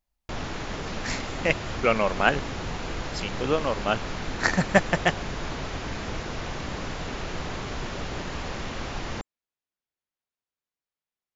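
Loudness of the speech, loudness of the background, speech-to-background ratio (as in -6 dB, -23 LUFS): -26.0 LUFS, -33.5 LUFS, 7.5 dB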